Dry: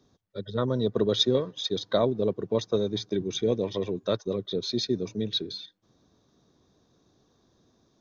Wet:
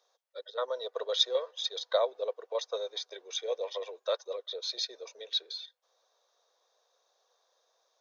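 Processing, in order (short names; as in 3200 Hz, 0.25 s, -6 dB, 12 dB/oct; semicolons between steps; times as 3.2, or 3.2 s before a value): Chebyshev high-pass 500 Hz, order 5; gain -1.5 dB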